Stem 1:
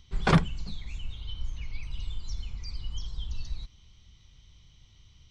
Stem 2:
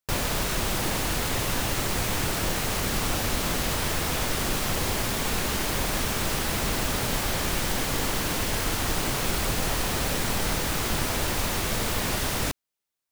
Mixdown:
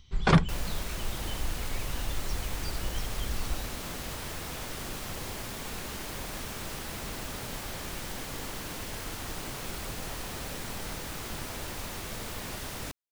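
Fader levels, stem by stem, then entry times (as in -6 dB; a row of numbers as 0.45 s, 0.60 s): +0.5 dB, -11.0 dB; 0.00 s, 0.40 s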